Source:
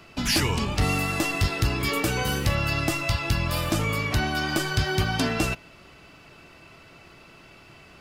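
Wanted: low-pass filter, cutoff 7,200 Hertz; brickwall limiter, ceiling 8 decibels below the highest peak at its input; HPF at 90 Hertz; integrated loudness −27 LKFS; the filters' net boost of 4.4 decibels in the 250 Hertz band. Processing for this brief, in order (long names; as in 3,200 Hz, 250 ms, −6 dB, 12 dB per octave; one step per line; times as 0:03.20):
high-pass filter 90 Hz
low-pass filter 7,200 Hz
parametric band 250 Hz +6 dB
brickwall limiter −17.5 dBFS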